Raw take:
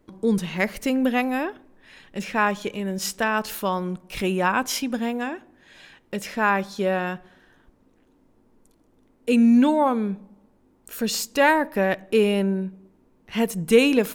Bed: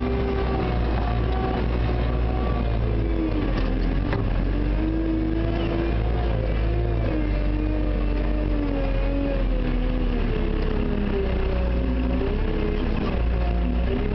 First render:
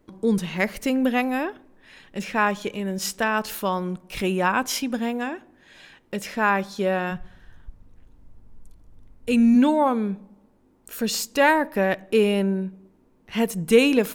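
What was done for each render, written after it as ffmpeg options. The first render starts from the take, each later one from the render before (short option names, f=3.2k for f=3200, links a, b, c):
-filter_complex "[0:a]asplit=3[a][b][c];[a]afade=t=out:st=7.1:d=0.02[d];[b]asubboost=boost=10:cutoff=97,afade=t=in:st=7.1:d=0.02,afade=t=out:st=9.54:d=0.02[e];[c]afade=t=in:st=9.54:d=0.02[f];[d][e][f]amix=inputs=3:normalize=0"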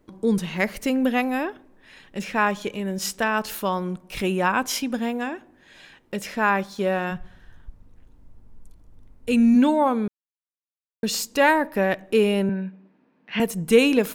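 -filter_complex "[0:a]asettb=1/sr,asplit=3[a][b][c];[a]atrim=end=6.634[d];[b]atrim=start=6.63:end=7.05,asetpts=PTS-STARTPTS,afade=t=in:d=0.004:c=qsin,afade=t=out:st=0.416:d=0.004:c=qsin,aeval=exprs='sgn(val(0))*max(abs(val(0))-0.00266,0)':c=same[e];[c]atrim=start=7.046[f];[d][e]acrossfade=d=0.004:c1=hsin:c2=qsin[g];[g][f]acrossfade=d=0.004:c1=qsin:c2=hsin,asettb=1/sr,asplit=3[h][i][j];[h]atrim=end=12.494[k];[i]atrim=start=12.49:end=13.4,asetpts=PTS-STARTPTS,afade=t=in:d=0.004:c=qsin,afade=t=out:st=0.906:d=0.004:c=qsin,highpass=f=160:w=0.5412,highpass=f=160:w=1.3066,equalizer=f=380:t=q:w=4:g=-7,equalizer=f=1.7k:t=q:w=4:g=8,equalizer=f=2.5k:t=q:w=4:g=6,lowpass=f=4.6k:w=0.5412,lowpass=f=4.6k:w=1.3066[l];[j]atrim=start=13.396[m];[k][l]acrossfade=d=0.004:c1=hsin:c2=qsin[n];[n][m]acrossfade=d=0.004:c1=qsin:c2=hsin,asplit=3[o][p][q];[o]atrim=end=10.08,asetpts=PTS-STARTPTS,afade=t=out:st=10.076:d=0.004:c=hsin[r];[p]atrim=start=10.08:end=11.03,asetpts=PTS-STARTPTS,volume=0[s];[q]atrim=start=11.03,asetpts=PTS-STARTPTS,afade=t=in:d=0.004:c=hsin[t];[r][s][t]concat=n=3:v=0:a=1"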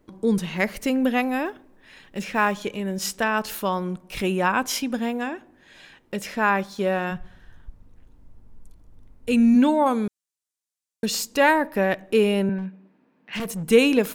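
-filter_complex "[0:a]asettb=1/sr,asplit=3[a][b][c];[a]atrim=end=1.454[d];[b]atrim=start=1.45:end=2.65,asetpts=PTS-STARTPTS,afade=t=in:d=0.004:c=qsin,afade=t=out:st=1.196:d=0.004:c=qsin,acrusher=bits=8:mode=log:mix=0:aa=0.000001[e];[c]atrim=start=2.646[f];[d][e]acrossfade=d=0.004:c1=hsin:c2=qsin[g];[g][f]acrossfade=d=0.004:c1=qsin:c2=hsin,asettb=1/sr,asplit=3[h][i][j];[h]atrim=end=9.864[k];[i]atrim=start=9.86:end=11.06,asetpts=PTS-STARTPTS,afade=t=in:d=0.004:c=qsin,afade=t=out:st=1.196:d=0.004:c=qsin,equalizer=f=7.7k:w=0.7:g=11.5[l];[j]atrim=start=11.056[m];[k][l]acrossfade=d=0.004:c1=hsin:c2=qsin[n];[n][m]acrossfade=d=0.004:c1=qsin:c2=hsin,asettb=1/sr,asplit=3[o][p][q];[o]atrim=end=12.584[r];[p]atrim=start=12.58:end=13.7,asetpts=PTS-STARTPTS,afade=t=in:d=0.004:c=qsin,afade=t=out:st=1.116:d=0.004:c=qsin,asoftclip=type=hard:threshold=-26dB[s];[q]atrim=start=13.696[t];[r][s]acrossfade=d=0.004:c1=hsin:c2=qsin[u];[u][t]acrossfade=d=0.004:c1=qsin:c2=hsin"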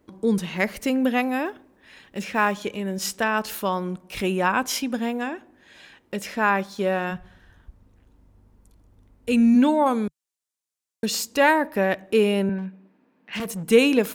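-af "highpass=42,equalizer=f=150:t=o:w=0.28:g=-4.5"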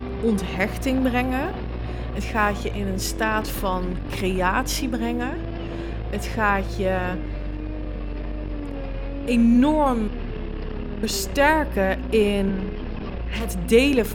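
-filter_complex "[1:a]volume=-6.5dB[a];[0:a][a]amix=inputs=2:normalize=0"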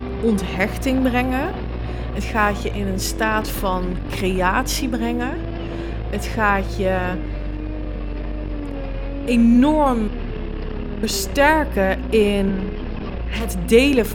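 -af "volume=3dB"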